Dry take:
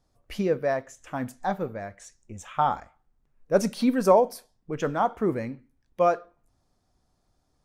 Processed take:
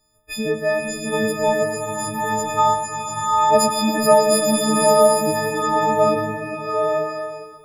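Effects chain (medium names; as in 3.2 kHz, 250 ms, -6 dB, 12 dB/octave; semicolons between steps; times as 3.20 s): partials quantised in pitch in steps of 6 st; two-band feedback delay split 420 Hz, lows 152 ms, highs 108 ms, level -10.5 dB; swelling reverb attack 880 ms, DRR -2.5 dB; trim +1.5 dB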